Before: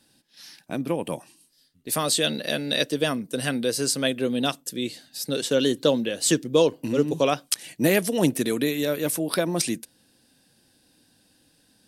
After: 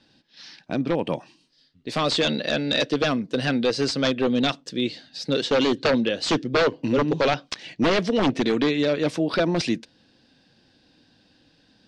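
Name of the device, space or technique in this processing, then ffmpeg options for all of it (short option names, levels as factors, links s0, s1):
synthesiser wavefolder: -filter_complex "[0:a]asettb=1/sr,asplit=3[s0][s1][s2];[s0]atrim=end=7.034[s3];[s1]atrim=start=7.03:end=9.01,asetpts=PTS-STARTPTS,afade=t=in:d=0.004:c=qsin,afade=t=out:st=1.976:d=0.004:c=qsin,lowpass=8200[s4];[s2]atrim=start=9.006[s5];[s3][s4]acrossfade=d=0.004:c1=hsin:c2=qsin[s6];[s6][s5]acrossfade=d=0.004:c1=qsin:c2=hsin,aeval=exprs='0.133*(abs(mod(val(0)/0.133+3,4)-2)-1)':c=same,lowpass=f=5000:w=0.5412,lowpass=f=5000:w=1.3066,volume=1.58"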